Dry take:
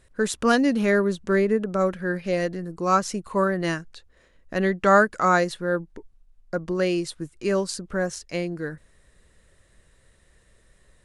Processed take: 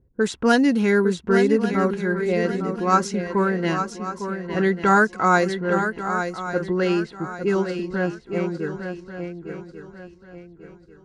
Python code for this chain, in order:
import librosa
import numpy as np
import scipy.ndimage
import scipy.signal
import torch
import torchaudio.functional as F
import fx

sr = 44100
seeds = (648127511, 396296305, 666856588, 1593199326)

y = fx.notch_comb(x, sr, f0_hz=600.0)
y = fx.env_lowpass(y, sr, base_hz=350.0, full_db=-18.0)
y = fx.echo_swing(y, sr, ms=1141, ratio=3, feedback_pct=32, wet_db=-8.0)
y = y * 10.0 ** (3.0 / 20.0)